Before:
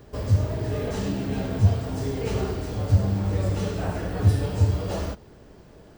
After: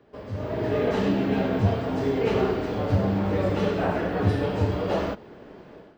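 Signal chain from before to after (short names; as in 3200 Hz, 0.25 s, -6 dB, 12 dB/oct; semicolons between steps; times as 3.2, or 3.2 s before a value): three-band isolator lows -15 dB, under 170 Hz, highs -21 dB, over 3800 Hz; AGC gain up to 13.5 dB; gain -6.5 dB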